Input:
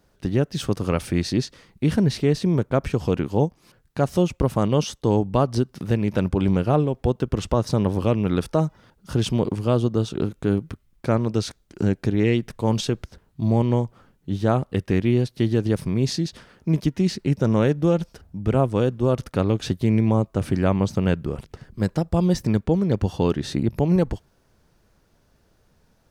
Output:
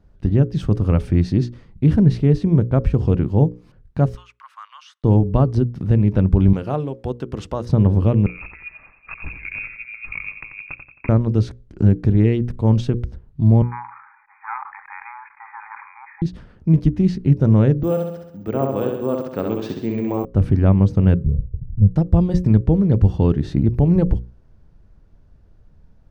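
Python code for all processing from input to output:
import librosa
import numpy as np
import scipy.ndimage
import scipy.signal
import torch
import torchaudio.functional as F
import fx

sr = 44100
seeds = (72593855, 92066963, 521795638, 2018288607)

y = fx.chain(x, sr, fx.steep_highpass(hz=1100.0, slope=48),
    fx.high_shelf(hz=3400.0, db=-11.0), at=(4.15, 5.04))
y = fx.chain(y, sr, fx.highpass(hz=530.0, slope=6),
    fx.high_shelf(hz=4100.0, db=8.0), at=(6.53, 7.66))
y = fx.chain(y, sr, fx.over_compress(threshold_db=-27.0, ratio=-0.5),
    fx.echo_feedback(ms=89, feedback_pct=45, wet_db=-8.5),
    fx.freq_invert(carrier_hz=2600), at=(8.26, 11.09))
y = fx.chain(y, sr, fx.leveller(passes=2),
    fx.brickwall_bandpass(low_hz=790.0, high_hz=2500.0),
    fx.sustainer(db_per_s=56.0), at=(13.62, 16.22))
y = fx.chain(y, sr, fx.highpass(hz=320.0, slope=12),
    fx.echo_feedback(ms=66, feedback_pct=56, wet_db=-4),
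    fx.resample_bad(factor=2, down='filtered', up='zero_stuff'), at=(17.83, 20.25))
y = fx.chain(y, sr, fx.gaussian_blur(sigma=24.0),
    fx.comb(ms=1.6, depth=0.8), at=(21.24, 21.96))
y = fx.riaa(y, sr, side='playback')
y = fx.hum_notches(y, sr, base_hz=60, count=9)
y = y * 10.0 ** (-2.5 / 20.0)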